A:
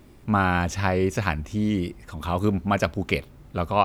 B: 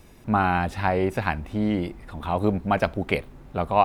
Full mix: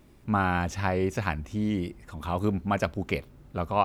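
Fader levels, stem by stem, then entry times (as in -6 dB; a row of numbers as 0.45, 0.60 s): -6.0, -16.0 dB; 0.00, 0.00 s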